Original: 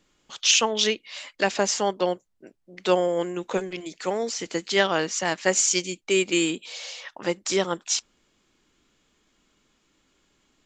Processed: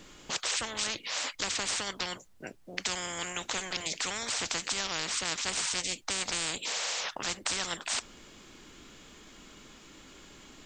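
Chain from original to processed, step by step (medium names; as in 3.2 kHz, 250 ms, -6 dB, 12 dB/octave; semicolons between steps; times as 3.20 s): spectrum-flattening compressor 10:1; trim -8 dB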